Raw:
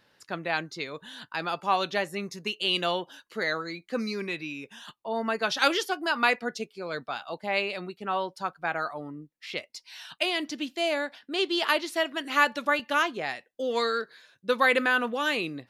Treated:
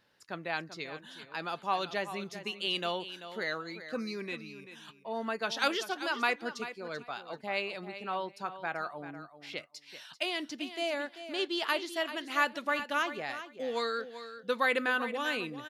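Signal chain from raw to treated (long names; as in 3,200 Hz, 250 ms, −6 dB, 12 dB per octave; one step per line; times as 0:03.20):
gain on a spectral selection 0:04.42–0:04.75, 210–8,700 Hz −7 dB
repeating echo 388 ms, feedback 16%, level −12 dB
level −6 dB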